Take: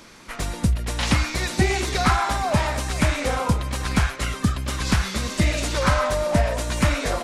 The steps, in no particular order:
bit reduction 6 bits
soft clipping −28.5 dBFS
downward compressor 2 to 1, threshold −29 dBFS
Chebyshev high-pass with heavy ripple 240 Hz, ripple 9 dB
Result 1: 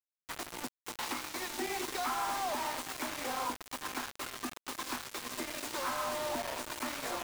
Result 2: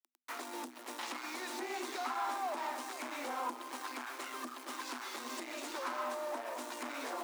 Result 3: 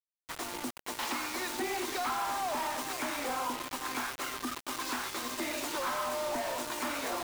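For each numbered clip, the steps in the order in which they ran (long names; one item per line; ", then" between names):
downward compressor, then Chebyshev high-pass with heavy ripple, then bit reduction, then soft clipping
bit reduction, then downward compressor, then soft clipping, then Chebyshev high-pass with heavy ripple
Chebyshev high-pass with heavy ripple, then downward compressor, then bit reduction, then soft clipping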